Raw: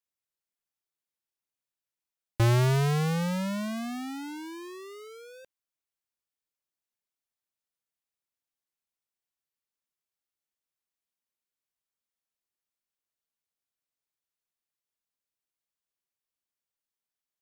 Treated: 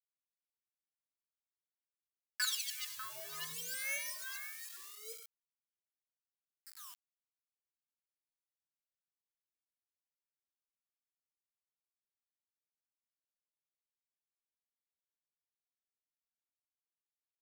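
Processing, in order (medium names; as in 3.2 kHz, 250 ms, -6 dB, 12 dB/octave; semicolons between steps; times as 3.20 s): local Wiener filter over 41 samples; wah-wah 0.57 Hz 290–2100 Hz, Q 19; waveshaping leveller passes 5; 6.58–7.04 s: painted sound fall 750–2000 Hz -58 dBFS; bass shelf 250 Hz -11 dB; comb 1.8 ms, depth 59%; reverberation RT60 0.55 s, pre-delay 62 ms, DRR 11 dB; phase shifter stages 2, 2 Hz, lowest notch 370–1100 Hz; 2.45–4.77 s: three bands offset in time highs, lows, mids 420/540 ms, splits 260/1600 Hz; word length cut 10-bit, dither none; pre-emphasis filter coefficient 0.97; trim +13.5 dB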